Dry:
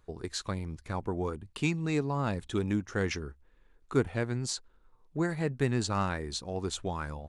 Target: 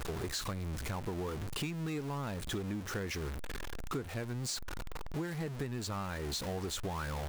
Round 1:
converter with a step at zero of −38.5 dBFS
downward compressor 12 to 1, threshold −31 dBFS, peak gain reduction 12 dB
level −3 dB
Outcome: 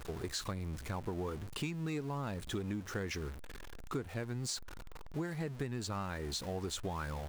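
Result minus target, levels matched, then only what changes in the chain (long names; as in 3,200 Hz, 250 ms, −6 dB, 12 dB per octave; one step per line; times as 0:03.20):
converter with a step at zero: distortion −6 dB
change: converter with a step at zero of −30.5 dBFS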